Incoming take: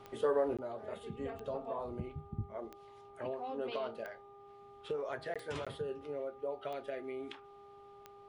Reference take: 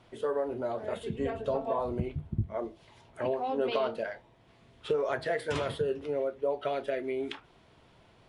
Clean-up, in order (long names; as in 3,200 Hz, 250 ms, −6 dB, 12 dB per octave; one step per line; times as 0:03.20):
click removal
hum removal 402.7 Hz, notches 3
repair the gap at 0:00.57/0:05.34/0:05.65, 16 ms
level 0 dB, from 0:00.57 +9 dB